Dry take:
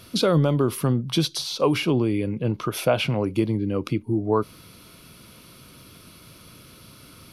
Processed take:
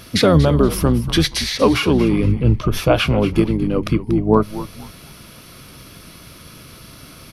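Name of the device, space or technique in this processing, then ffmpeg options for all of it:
octave pedal: -filter_complex "[0:a]asettb=1/sr,asplit=3[link_01][link_02][link_03];[link_01]atrim=end=2.234[link_04];[link_02]atrim=start=2.23:end=2.9,asetpts=PTS-STARTPTS,afade=type=in:duration=0.004:curve=qsin,afade=type=out:start_time=0.666:duration=0.004:curve=qsin,equalizer=frequency=100:width_type=o:width=0.67:gain=8,equalizer=frequency=630:width_type=o:width=0.67:gain=-6,equalizer=frequency=1600:width_type=o:width=0.67:gain=-8,equalizer=frequency=10000:width_type=o:width=0.67:gain=-7[link_05];[link_03]atrim=start=2.896[link_06];[link_04][link_05]acrossfade=duration=0.004:curve1=hsin:curve2=qsin[link_07];[link_07][link_06]acrossfade=duration=0.004:curve1=qsin:curve2=hsin,asplit=4[link_08][link_09][link_10][link_11];[link_09]adelay=236,afreqshift=-96,volume=-13dB[link_12];[link_10]adelay=472,afreqshift=-192,volume=-23.2dB[link_13];[link_11]adelay=708,afreqshift=-288,volume=-33.3dB[link_14];[link_08][link_12][link_13][link_14]amix=inputs=4:normalize=0,asplit=2[link_15][link_16];[link_16]asetrate=22050,aresample=44100,atempo=2,volume=-6dB[link_17];[link_15][link_17]amix=inputs=2:normalize=0,volume=6dB"

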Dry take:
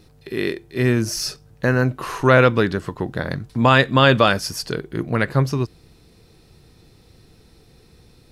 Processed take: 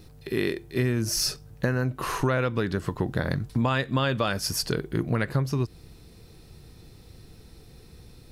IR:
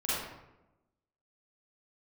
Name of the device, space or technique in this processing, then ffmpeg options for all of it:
ASMR close-microphone chain: -af "lowshelf=frequency=140:gain=5.5,acompressor=threshold=-20dB:ratio=8,highshelf=frequency=11000:gain=7.5,volume=-1dB"

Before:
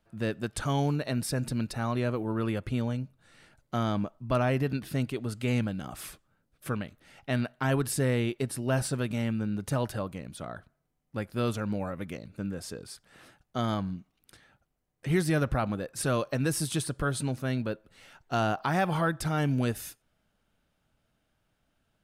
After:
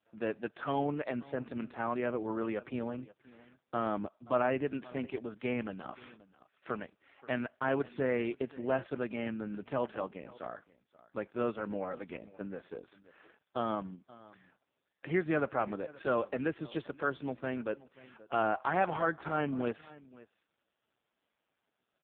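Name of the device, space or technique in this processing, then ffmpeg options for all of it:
satellite phone: -af "highpass=310,lowpass=3000,aecho=1:1:529:0.0944" -ar 8000 -c:a libopencore_amrnb -b:a 4750

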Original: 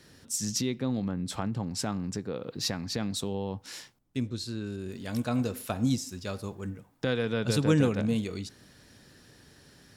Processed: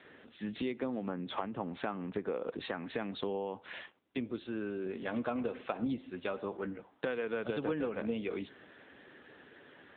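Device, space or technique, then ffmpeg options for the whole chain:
voicemail: -af "highpass=360,lowpass=3000,acompressor=threshold=-37dB:ratio=8,volume=6.5dB" -ar 8000 -c:a libopencore_amrnb -b:a 7950

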